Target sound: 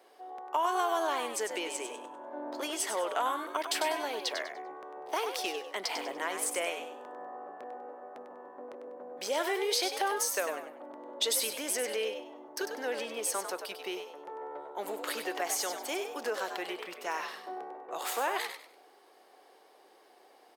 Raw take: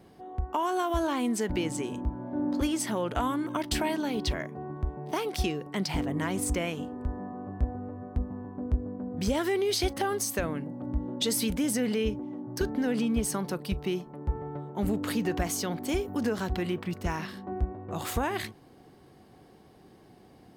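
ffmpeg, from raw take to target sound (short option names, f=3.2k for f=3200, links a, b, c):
-filter_complex "[0:a]highpass=f=450:w=0.5412,highpass=f=450:w=1.3066,asplit=5[a][b][c][d][e];[b]adelay=98,afreqshift=71,volume=-7.5dB[f];[c]adelay=196,afreqshift=142,volume=-18dB[g];[d]adelay=294,afreqshift=213,volume=-28.4dB[h];[e]adelay=392,afreqshift=284,volume=-38.9dB[i];[a][f][g][h][i]amix=inputs=5:normalize=0"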